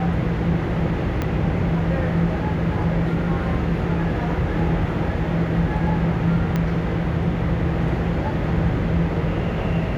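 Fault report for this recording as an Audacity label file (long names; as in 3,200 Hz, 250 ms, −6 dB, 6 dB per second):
1.220000	1.220000	click −11 dBFS
6.560000	6.560000	click −11 dBFS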